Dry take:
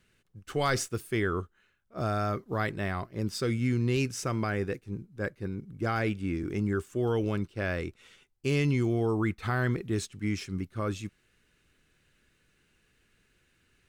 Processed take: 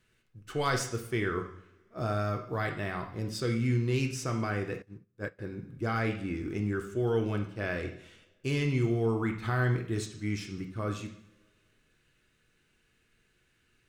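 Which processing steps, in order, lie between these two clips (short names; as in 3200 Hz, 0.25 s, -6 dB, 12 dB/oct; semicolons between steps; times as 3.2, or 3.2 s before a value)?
on a send at -3 dB: reverb, pre-delay 3 ms; 4.82–5.39 on the sum: upward expander 2.5:1, over -45 dBFS; gain -3 dB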